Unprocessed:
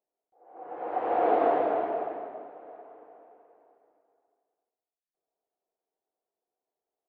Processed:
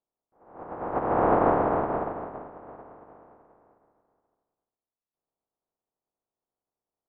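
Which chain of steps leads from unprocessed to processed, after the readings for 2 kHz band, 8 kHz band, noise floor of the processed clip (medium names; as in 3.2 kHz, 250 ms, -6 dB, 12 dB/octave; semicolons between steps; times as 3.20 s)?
+4.0 dB, no reading, under -85 dBFS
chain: spectral contrast reduction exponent 0.25; low-pass 1.1 kHz 24 dB/octave; trim +5.5 dB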